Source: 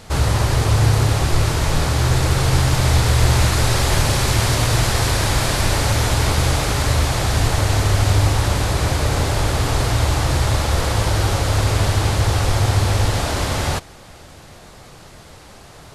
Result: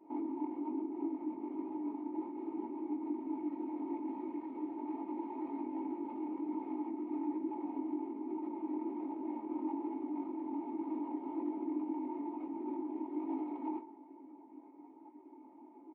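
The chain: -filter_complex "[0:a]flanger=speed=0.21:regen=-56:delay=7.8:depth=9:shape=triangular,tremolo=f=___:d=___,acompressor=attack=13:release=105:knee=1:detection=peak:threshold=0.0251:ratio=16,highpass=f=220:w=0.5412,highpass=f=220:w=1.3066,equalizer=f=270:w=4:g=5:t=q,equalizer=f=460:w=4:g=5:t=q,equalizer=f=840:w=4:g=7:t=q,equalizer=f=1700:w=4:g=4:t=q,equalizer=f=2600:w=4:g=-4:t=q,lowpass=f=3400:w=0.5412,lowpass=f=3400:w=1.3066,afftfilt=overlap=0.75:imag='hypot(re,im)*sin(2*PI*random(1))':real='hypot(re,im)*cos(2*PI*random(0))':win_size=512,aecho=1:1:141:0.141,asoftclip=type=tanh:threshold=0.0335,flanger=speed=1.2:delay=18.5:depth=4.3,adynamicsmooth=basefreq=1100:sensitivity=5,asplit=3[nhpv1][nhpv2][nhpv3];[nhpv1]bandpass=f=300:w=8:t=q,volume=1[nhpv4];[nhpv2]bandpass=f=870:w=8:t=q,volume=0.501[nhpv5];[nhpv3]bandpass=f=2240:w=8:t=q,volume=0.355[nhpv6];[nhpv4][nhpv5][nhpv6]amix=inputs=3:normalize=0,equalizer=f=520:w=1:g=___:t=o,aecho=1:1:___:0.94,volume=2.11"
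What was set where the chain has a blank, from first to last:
210, 0.974, 13, 3.2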